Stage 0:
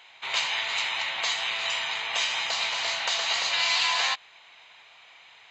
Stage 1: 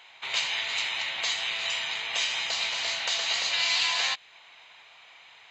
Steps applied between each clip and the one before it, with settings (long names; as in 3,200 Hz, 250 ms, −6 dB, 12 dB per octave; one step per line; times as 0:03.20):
dynamic equaliser 1,000 Hz, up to −6 dB, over −42 dBFS, Q 0.97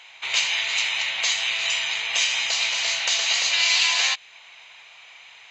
graphic EQ with 15 bands 250 Hz −7 dB, 2,500 Hz +5 dB, 6,300 Hz +8 dB
level +2 dB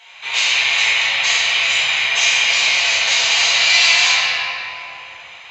rectangular room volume 180 cubic metres, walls hard, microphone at 1.6 metres
level −2 dB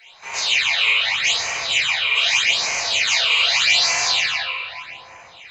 all-pass phaser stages 8, 0.82 Hz, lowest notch 220–3,500 Hz